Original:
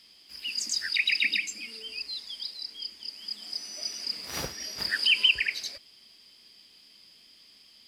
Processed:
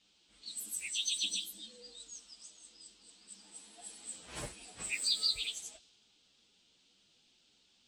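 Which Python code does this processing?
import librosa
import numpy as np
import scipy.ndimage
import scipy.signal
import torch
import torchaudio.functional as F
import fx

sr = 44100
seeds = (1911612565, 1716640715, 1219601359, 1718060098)

y = fx.partial_stretch(x, sr, pct=117)
y = fx.dmg_noise_band(y, sr, seeds[0], low_hz=3000.0, high_hz=8700.0, level_db=-56.0)
y = fx.env_lowpass(y, sr, base_hz=2100.0, full_db=-31.5)
y = F.gain(torch.from_numpy(y), -3.5).numpy()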